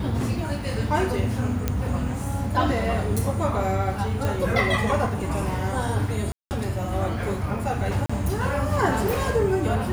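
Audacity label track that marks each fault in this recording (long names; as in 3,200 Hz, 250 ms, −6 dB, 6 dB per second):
1.680000	1.680000	click −10 dBFS
4.250000	4.250000	click
6.320000	6.510000	drop-out 189 ms
8.060000	8.100000	drop-out 35 ms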